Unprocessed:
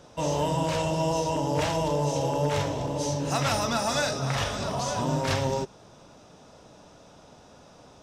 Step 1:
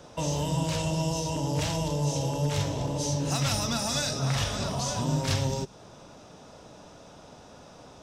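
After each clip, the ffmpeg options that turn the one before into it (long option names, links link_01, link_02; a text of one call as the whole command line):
ffmpeg -i in.wav -filter_complex "[0:a]acrossover=split=240|3000[link_01][link_02][link_03];[link_02]acompressor=threshold=-35dB:ratio=6[link_04];[link_01][link_04][link_03]amix=inputs=3:normalize=0,volume=2.5dB" out.wav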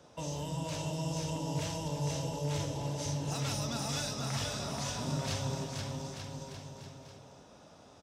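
ffmpeg -i in.wav -af "highpass=58,aecho=1:1:480|888|1235|1530|1780:0.631|0.398|0.251|0.158|0.1,volume=-9dB" out.wav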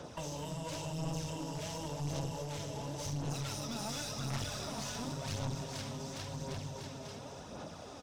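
ffmpeg -i in.wav -af "acompressor=threshold=-49dB:ratio=2.5,aphaser=in_gain=1:out_gain=1:delay=4.8:decay=0.41:speed=0.92:type=sinusoidal,aeval=exprs='clip(val(0),-1,0.00501)':channel_layout=same,volume=7.5dB" out.wav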